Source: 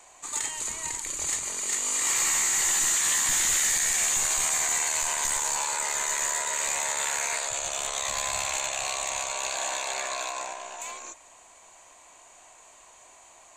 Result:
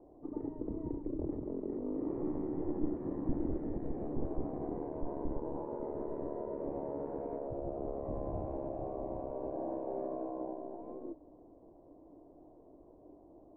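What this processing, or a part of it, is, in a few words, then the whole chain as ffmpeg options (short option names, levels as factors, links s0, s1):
under water: -af "lowpass=f=480:w=0.5412,lowpass=f=480:w=1.3066,equalizer=f=300:t=o:w=0.53:g=11.5,volume=2.24"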